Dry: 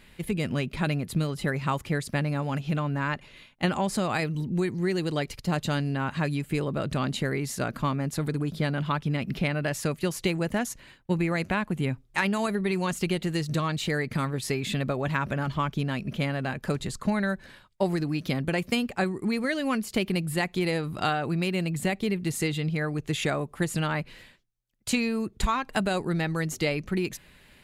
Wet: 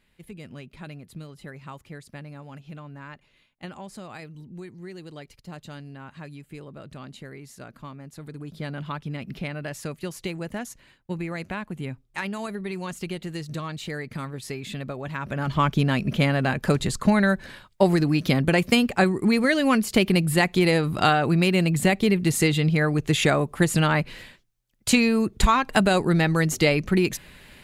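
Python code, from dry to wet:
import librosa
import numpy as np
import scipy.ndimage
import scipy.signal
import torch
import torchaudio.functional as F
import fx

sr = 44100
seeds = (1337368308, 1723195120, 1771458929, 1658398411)

y = fx.gain(x, sr, db=fx.line((8.12, -13.0), (8.71, -5.0), (15.15, -5.0), (15.64, 7.0)))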